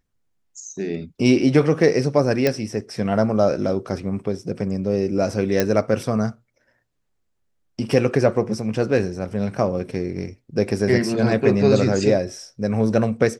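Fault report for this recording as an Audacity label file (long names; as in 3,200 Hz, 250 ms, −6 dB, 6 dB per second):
2.470000	2.470000	click −6 dBFS
5.600000	5.600000	click −4 dBFS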